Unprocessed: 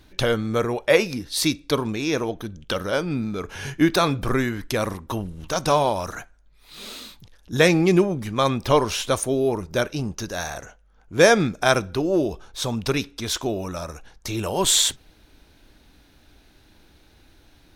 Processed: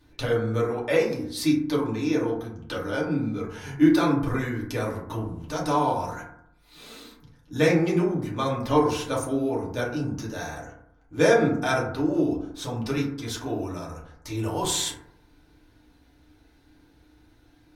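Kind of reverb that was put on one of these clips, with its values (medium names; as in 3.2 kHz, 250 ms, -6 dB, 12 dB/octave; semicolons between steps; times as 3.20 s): FDN reverb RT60 0.71 s, low-frequency decay 1.25×, high-frequency decay 0.3×, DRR -5.5 dB; trim -11.5 dB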